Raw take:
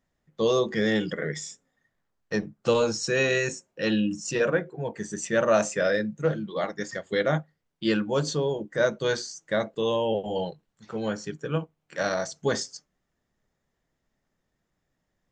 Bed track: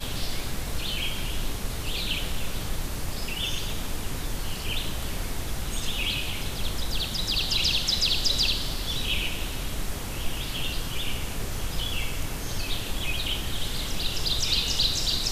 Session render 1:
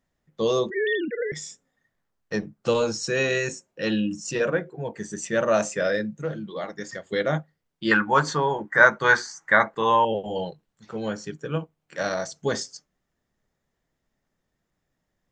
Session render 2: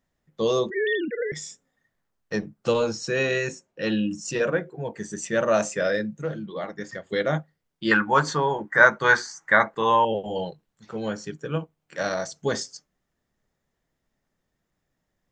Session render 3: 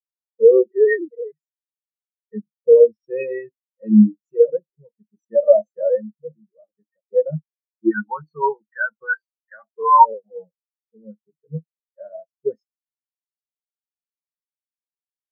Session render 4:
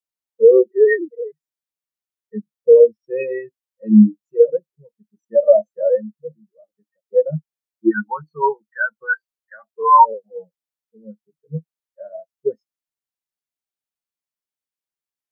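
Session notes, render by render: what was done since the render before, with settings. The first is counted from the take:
0.7–1.32 sine-wave speech; 6.23–7.04 compressor 1.5:1, threshold -32 dBFS; 7.91–10.05 band shelf 1300 Hz +15.5 dB
2.72–4.01 air absorption 60 m; 6.46–7.1 tone controls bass +2 dB, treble -7 dB
maximiser +12.5 dB; spectral expander 4:1
gain +2 dB; limiter -2 dBFS, peak gain reduction 3 dB

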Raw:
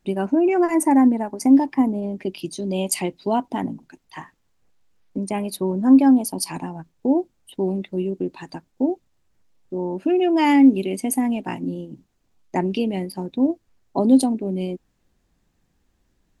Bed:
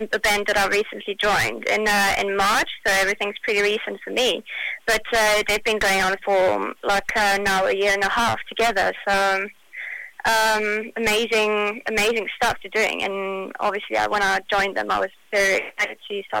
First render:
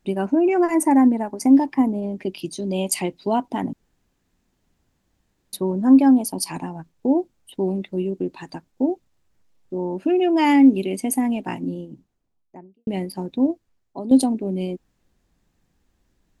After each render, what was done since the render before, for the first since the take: 3.73–5.53 room tone; 11.56–12.87 studio fade out; 13.44–14.11 fade out quadratic, to -11.5 dB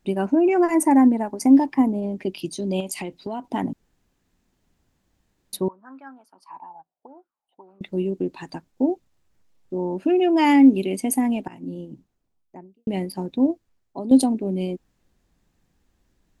2.8–3.52 compressor, threshold -26 dBFS; 5.68–7.81 auto-wah 640–1400 Hz, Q 8.2, up, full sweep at -18.5 dBFS; 11.48–11.88 fade in, from -22 dB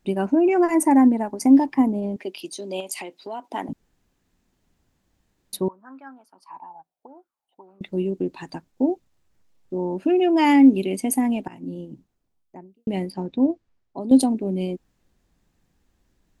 2.16–3.69 HPF 420 Hz; 13.1–14.01 air absorption 92 m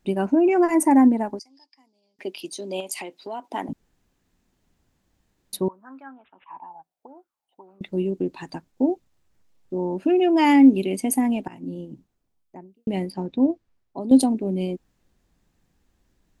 1.39–2.19 band-pass 4900 Hz, Q 9.7; 6.03–6.64 careless resampling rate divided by 6×, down none, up filtered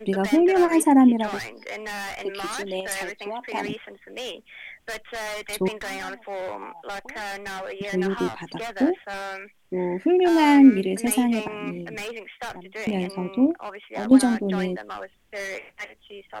add bed -13.5 dB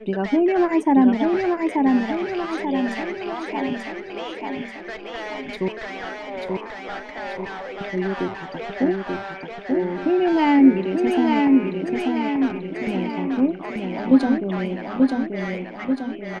air absorption 180 m; feedback echo 0.886 s, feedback 54%, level -3 dB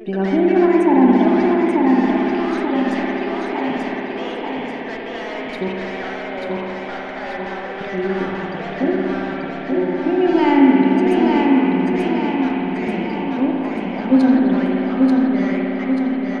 reverse echo 0.431 s -22 dB; spring tank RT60 3.6 s, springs 57 ms, chirp 30 ms, DRR -1.5 dB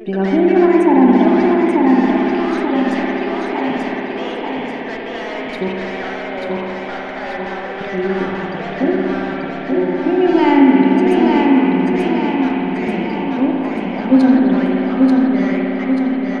gain +2.5 dB; limiter -1 dBFS, peak gain reduction 2 dB

